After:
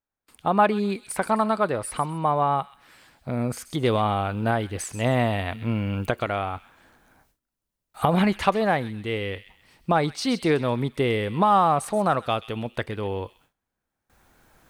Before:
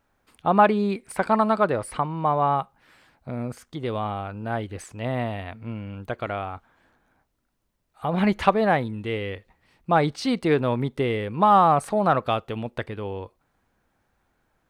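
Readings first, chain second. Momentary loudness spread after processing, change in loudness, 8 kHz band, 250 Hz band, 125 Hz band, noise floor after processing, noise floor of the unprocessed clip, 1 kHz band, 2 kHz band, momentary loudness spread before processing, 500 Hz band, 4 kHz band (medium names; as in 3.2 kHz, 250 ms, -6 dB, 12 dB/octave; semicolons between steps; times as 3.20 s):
10 LU, -0.5 dB, +7.0 dB, 0.0 dB, +2.0 dB, -84 dBFS, -72 dBFS, -1.0 dB, +1.0 dB, 16 LU, -0.5 dB, +3.5 dB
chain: recorder AGC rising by 5.6 dB/s; treble shelf 4.7 kHz +8 dB; on a send: feedback echo behind a high-pass 130 ms, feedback 33%, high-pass 2.5 kHz, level -11 dB; on the sum: gate with hold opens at -47 dBFS; trim -2.5 dB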